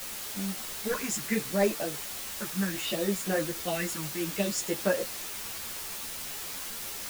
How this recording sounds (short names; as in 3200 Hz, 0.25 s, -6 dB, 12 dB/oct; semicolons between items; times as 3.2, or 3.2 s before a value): phasing stages 4, 0.68 Hz, lowest notch 530–4400 Hz; a quantiser's noise floor 6-bit, dither triangular; a shimmering, thickened sound